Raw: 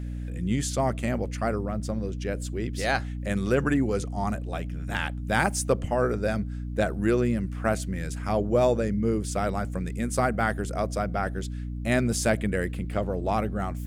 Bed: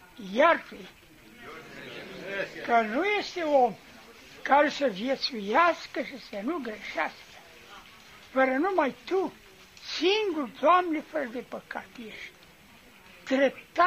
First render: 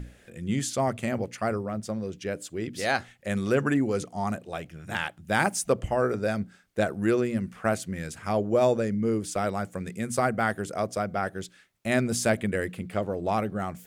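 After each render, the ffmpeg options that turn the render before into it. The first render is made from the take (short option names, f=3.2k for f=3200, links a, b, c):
-af "bandreject=f=60:t=h:w=6,bandreject=f=120:t=h:w=6,bandreject=f=180:t=h:w=6,bandreject=f=240:t=h:w=6,bandreject=f=300:t=h:w=6"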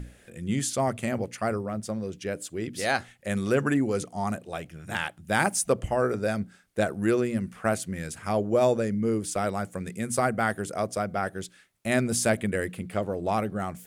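-af "equalizer=f=10k:w=1.6:g=5.5"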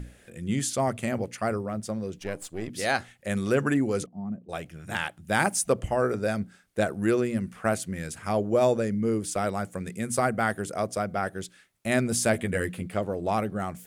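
-filter_complex "[0:a]asettb=1/sr,asplit=3[a][b][c];[a]atrim=end=2.184[d];[b]atrim=start=2.18:end=2.7,asetpts=PTS-STARTPTS,afade=t=in:d=0.004:c=qsin,afade=t=out:st=0.516:d=0.004:c=qsin,aeval=exprs='if(lt(val(0),0),0.447*val(0),val(0))':c=same[e];[c]atrim=start=2.696[f];[d][e]acrossfade=d=0.004:c1=hsin:c2=qsin[g];[g][f]acrossfade=d=0.004:c1=qsin:c2=hsin,asettb=1/sr,asplit=3[h][i][j];[h]atrim=end=4.064[k];[i]atrim=start=4.06:end=4.49,asetpts=PTS-STARTPTS,afade=t=in:d=0.004:c=qsin,afade=t=out:st=0.426:d=0.004:c=qsin,bandpass=f=190:t=q:w=2[l];[j]atrim=start=4.486[m];[k][l]acrossfade=d=0.004:c1=hsin:c2=qsin[n];[n][m]acrossfade=d=0.004:c1=qsin:c2=hsin,asettb=1/sr,asplit=3[o][p][q];[o]atrim=end=12.334[r];[p]atrim=start=12.33:end=12.88,asetpts=PTS-STARTPTS,afade=t=in:d=0.004:c=qsin,afade=t=out:st=0.546:d=0.004:c=qsin,asplit=2[s][t];[t]adelay=12,volume=-5dB[u];[s][u]amix=inputs=2:normalize=0,atrim=end_sample=24255[v];[q]atrim=start=12.876[w];[r][v]acrossfade=d=0.004:c1=hsin:c2=qsin[x];[x][w]acrossfade=d=0.004:c1=qsin:c2=hsin"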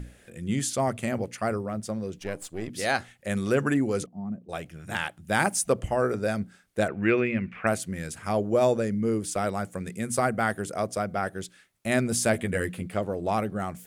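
-filter_complex "[0:a]asettb=1/sr,asplit=3[a][b][c];[a]atrim=end=6.884[d];[b]atrim=start=6.88:end=7.67,asetpts=PTS-STARTPTS,afade=t=in:d=0.004:c=qsin,afade=t=out:st=0.786:d=0.004:c=qsin,lowpass=f=2.4k:t=q:w=5[e];[c]atrim=start=7.666[f];[d][e]acrossfade=d=0.004:c1=hsin:c2=qsin[g];[g][f]acrossfade=d=0.004:c1=qsin:c2=hsin"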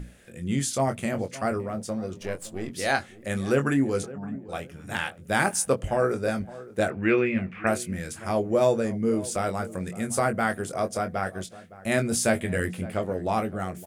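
-filter_complex "[0:a]asplit=2[a][b];[b]adelay=22,volume=-7.5dB[c];[a][c]amix=inputs=2:normalize=0,asplit=2[d][e];[e]adelay=563,lowpass=f=1.3k:p=1,volume=-17dB,asplit=2[f][g];[g]adelay=563,lowpass=f=1.3k:p=1,volume=0.3,asplit=2[h][i];[i]adelay=563,lowpass=f=1.3k:p=1,volume=0.3[j];[d][f][h][j]amix=inputs=4:normalize=0"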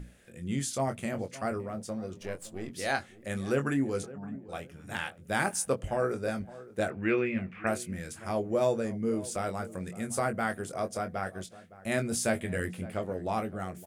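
-af "volume=-5.5dB"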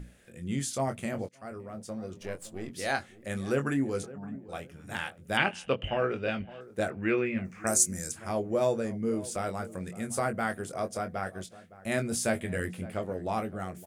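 -filter_complex "[0:a]asettb=1/sr,asplit=3[a][b][c];[a]atrim=end=5.374[d];[b]atrim=start=5.37:end=6.61,asetpts=PTS-STARTPTS,afade=t=in:d=0.004:c=qsin,afade=t=out:st=1.236:d=0.004:c=qsin,lowpass=f=2.9k:t=q:w=9.4[e];[c]atrim=start=6.606[f];[d][e]acrossfade=d=0.004:c1=hsin:c2=qsin[g];[g][f]acrossfade=d=0.004:c1=qsin:c2=hsin,asplit=3[h][i][j];[h]afade=t=out:st=7.44:d=0.02[k];[i]highshelf=f=4.5k:t=q:w=3:g=13.5,afade=t=in:st=7.44:d=0.02,afade=t=out:st=8.1:d=0.02[l];[j]afade=t=in:st=8.1:d=0.02[m];[k][l][m]amix=inputs=3:normalize=0,asplit=2[n][o];[n]atrim=end=1.29,asetpts=PTS-STARTPTS,afade=t=out:st=1.286:d=0.004:c=hsin:silence=0.0841395[p];[o]atrim=start=1.29,asetpts=PTS-STARTPTS,afade=t=in:d=1.12:c=qsin:silence=0.0841395[q];[p][q]concat=n=2:v=0:a=1"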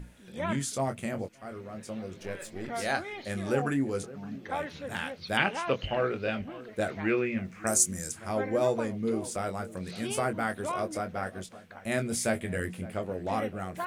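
-filter_complex "[1:a]volume=-13.5dB[a];[0:a][a]amix=inputs=2:normalize=0"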